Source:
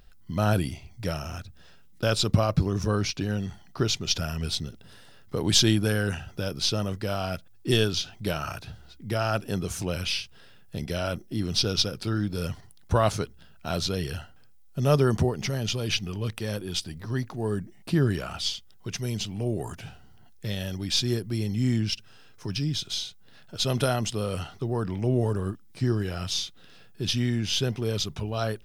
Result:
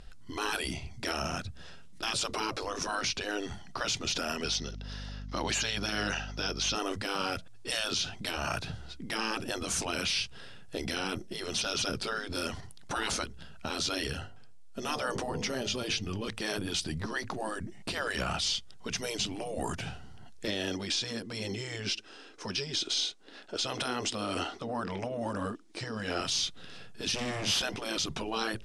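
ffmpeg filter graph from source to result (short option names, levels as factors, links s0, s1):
-filter_complex "[0:a]asettb=1/sr,asplit=3[s0][s1][s2];[s0]atrim=end=4.444[s3];[s1]atrim=start=4.44:end=6.75,asetpts=PTS-STARTPTS,afade=t=in:d=0.004:c=qsin,afade=t=out:st=2.306:d=0.004:c=qsin,highpass=420,highshelf=f=6900:t=q:w=3:g=-7,aeval=exprs='val(0)+0.00562*(sin(2*PI*50*n/s)+sin(2*PI*2*50*n/s)/2+sin(2*PI*3*50*n/s)/3+sin(2*PI*4*50*n/s)/4+sin(2*PI*5*50*n/s)/5)':c=same[s4];[s2]atrim=start=6.746[s5];[s3][s4]acrossfade=d=0.004:c1=hsin:c2=qsin[s6];[s6][s5]acrossfade=d=0.004:c1=qsin:c2=hsin,asettb=1/sr,asplit=3[s7][s8][s9];[s7]atrim=end=14.074[s10];[s8]atrim=start=14.07:end=16.28,asetpts=PTS-STARTPTS,afade=t=in:d=0.004:c=qsin,afade=t=out:st=2.206:d=0.004:c=qsin,flanger=delay=3.3:depth=1.9:regen=71:speed=1:shape=triangular,bandreject=f=49.54:t=h:w=4,bandreject=f=99.08:t=h:w=4,bandreject=f=148.62:t=h:w=4,bandreject=f=198.16:t=h:w=4,bandreject=f=247.7:t=h:w=4,bandreject=f=297.24:t=h:w=4,bandreject=f=346.78:t=h:w=4,bandreject=f=396.32:t=h:w=4,bandreject=f=445.86:t=h:w=4,bandreject=f=495.4:t=h:w=4,bandreject=f=544.94:t=h:w=4,bandreject=f=594.48:t=h:w=4,bandreject=f=644.02:t=h:w=4,bandreject=f=693.56:t=h:w=4,bandreject=f=743.1:t=h:w=4,bandreject=f=792.64:t=h:w=4,bandreject=f=842.18:t=h:w=4,bandreject=f=891.72:t=h:w=4,bandreject=f=941.26:t=h:w=4,bandreject=f=990.8:t=h:w=4,bandreject=f=1040.34:t=h:w=4[s11];[s9]atrim=start=16.276[s12];[s10][s11]acrossfade=d=0.004:c1=hsin:c2=qsin[s13];[s13][s12]acrossfade=d=0.004:c1=qsin:c2=hsin,asettb=1/sr,asplit=3[s14][s15][s16];[s14]atrim=end=20.474[s17];[s15]atrim=start=20.47:end=26.21,asetpts=PTS-STARTPTS,afade=t=in:d=0.004:c=qsin,afade=t=out:st=5.736:d=0.004:c=qsin,lowpass=8700,lowshelf=f=210:t=q:w=3:g=-13,acompressor=threshold=0.0501:ratio=6:attack=3.2:release=140:knee=1:detection=peak[s18];[s16]atrim=start=26.206[s19];[s17][s18]acrossfade=d=0.004:c1=hsin:c2=qsin[s20];[s20][s19]acrossfade=d=0.004:c1=qsin:c2=hsin,asettb=1/sr,asplit=3[s21][s22][s23];[s21]atrim=end=27.144[s24];[s22]atrim=start=27.14:end=27.62,asetpts=PTS-STARTPTS,afade=t=in:d=0.004:c=qsin,afade=t=out:st=0.476:d=0.004:c=qsin,highpass=100,volume=35.5,asoftclip=hard,volume=0.0282,asplit=2[s25][s26];[s26]adelay=47,volume=0.422[s27];[s25][s27]amix=inputs=2:normalize=0,atrim=end_sample=21168[s28];[s23]atrim=start=27.616[s29];[s24][s28]acrossfade=d=0.004:c1=hsin:c2=qsin[s30];[s30][s29]acrossfade=d=0.004:c1=qsin:c2=hsin,afftfilt=real='re*lt(hypot(re,im),0.112)':imag='im*lt(hypot(re,im),0.112)':win_size=1024:overlap=0.75,lowpass=f=9900:w=0.5412,lowpass=f=9900:w=1.3066,alimiter=level_in=1.33:limit=0.0631:level=0:latency=1:release=23,volume=0.75,volume=1.88"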